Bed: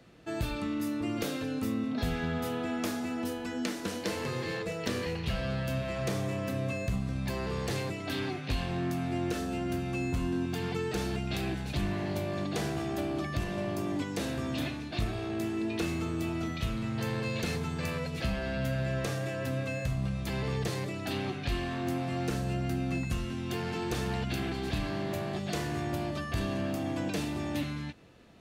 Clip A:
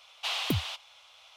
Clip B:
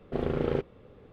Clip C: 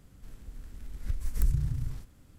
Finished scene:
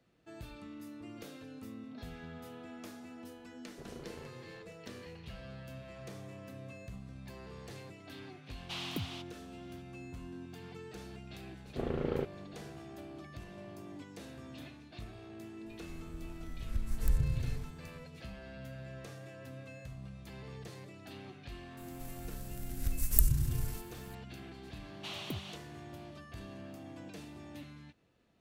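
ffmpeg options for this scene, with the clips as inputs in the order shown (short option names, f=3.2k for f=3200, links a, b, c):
-filter_complex "[2:a]asplit=2[a][b];[1:a]asplit=2[c][d];[3:a]asplit=2[e][f];[0:a]volume=-15dB[g];[a]alimiter=limit=-22dB:level=0:latency=1:release=214[h];[f]aemphasis=mode=production:type=75fm[i];[d]bandreject=f=5k:w=15[j];[h]atrim=end=1.12,asetpts=PTS-STARTPTS,volume=-14.5dB,afade=t=in:d=0.004:c=hsin,afade=t=out:st=1.116:d=0.004:c=hsin,adelay=3660[k];[c]atrim=end=1.36,asetpts=PTS-STARTPTS,volume=-9.5dB,afade=t=in:d=0.004:c=hsin,afade=t=out:st=1.356:d=0.004:c=hsin,adelay=8460[l];[b]atrim=end=1.12,asetpts=PTS-STARTPTS,volume=-6dB,afade=t=in:d=0.004:c=hsin,afade=t=out:st=1.116:d=0.004:c=hsin,adelay=11640[m];[e]atrim=end=2.38,asetpts=PTS-STARTPTS,volume=-3dB,afade=t=in:d=0.004:c=hsin,afade=t=out:st=2.376:d=0.004:c=hsin,adelay=15660[n];[i]atrim=end=2.38,asetpts=PTS-STARTPTS,volume=-1dB,afade=t=in:d=0.004:c=hsin,afade=t=out:st=2.376:d=0.004:c=hsin,adelay=21770[o];[j]atrim=end=1.36,asetpts=PTS-STARTPTS,volume=-11.5dB,afade=t=in:d=0.004:c=hsin,afade=t=out:st=1.356:d=0.004:c=hsin,adelay=24800[p];[g][k][l][m][n][o][p]amix=inputs=7:normalize=0"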